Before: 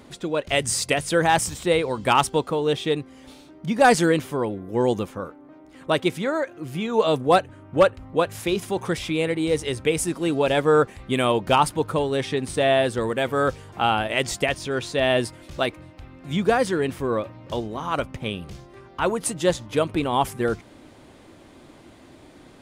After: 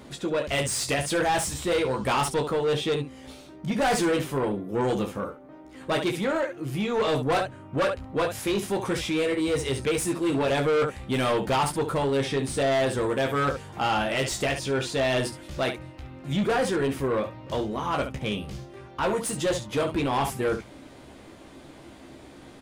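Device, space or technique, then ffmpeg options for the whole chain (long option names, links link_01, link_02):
saturation between pre-emphasis and de-emphasis: -af "highshelf=frequency=7000:gain=10,aecho=1:1:15|29|70:0.562|0.316|0.266,asoftclip=type=tanh:threshold=-20dB,highshelf=frequency=7000:gain=-10"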